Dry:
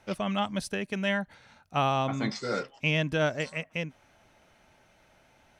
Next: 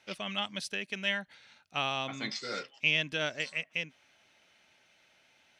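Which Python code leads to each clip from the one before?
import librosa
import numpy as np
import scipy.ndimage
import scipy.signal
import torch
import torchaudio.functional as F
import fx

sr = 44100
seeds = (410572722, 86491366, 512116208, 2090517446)

y = fx.weighting(x, sr, curve='D')
y = y * 10.0 ** (-8.5 / 20.0)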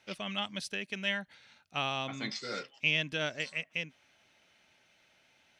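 y = fx.low_shelf(x, sr, hz=250.0, db=4.0)
y = y * 10.0 ** (-1.5 / 20.0)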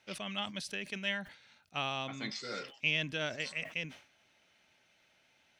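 y = fx.sustainer(x, sr, db_per_s=120.0)
y = y * 10.0 ** (-2.5 / 20.0)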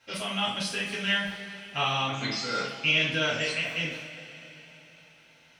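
y = fx.rev_double_slope(x, sr, seeds[0], early_s=0.44, late_s=3.9, knee_db=-18, drr_db=-9.0)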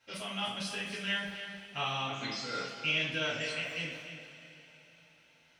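y = x + 10.0 ** (-10.5 / 20.0) * np.pad(x, (int(293 * sr / 1000.0), 0))[:len(x)]
y = y * 10.0 ** (-7.0 / 20.0)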